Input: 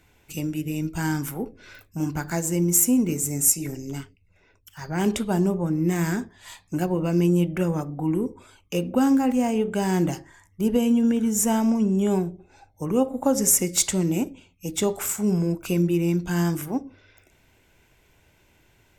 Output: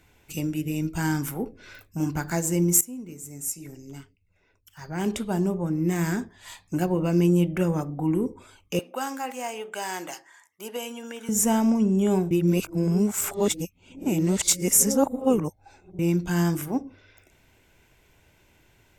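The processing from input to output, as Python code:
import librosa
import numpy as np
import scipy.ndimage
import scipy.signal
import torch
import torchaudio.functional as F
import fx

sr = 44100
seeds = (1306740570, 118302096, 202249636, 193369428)

y = fx.highpass(x, sr, hz=780.0, slope=12, at=(8.79, 11.29))
y = fx.edit(y, sr, fx.fade_in_from(start_s=2.81, length_s=3.82, floor_db=-19.5),
    fx.reverse_span(start_s=12.31, length_s=3.68), tone=tone)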